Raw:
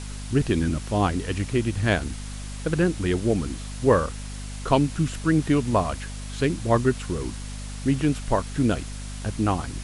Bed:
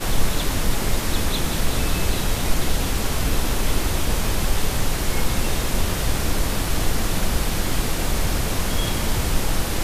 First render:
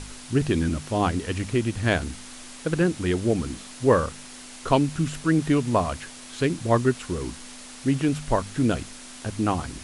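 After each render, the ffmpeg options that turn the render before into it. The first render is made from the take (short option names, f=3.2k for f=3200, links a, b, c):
-af "bandreject=f=50:t=h:w=4,bandreject=f=100:t=h:w=4,bandreject=f=150:t=h:w=4,bandreject=f=200:t=h:w=4"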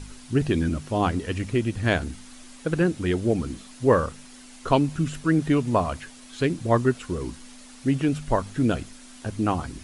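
-af "afftdn=nr=7:nf=-42"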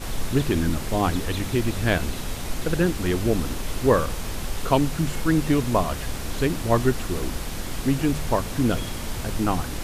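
-filter_complex "[1:a]volume=-8.5dB[a];[0:a][a]amix=inputs=2:normalize=0"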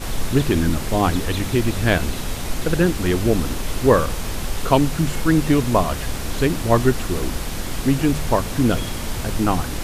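-af "volume=4dB"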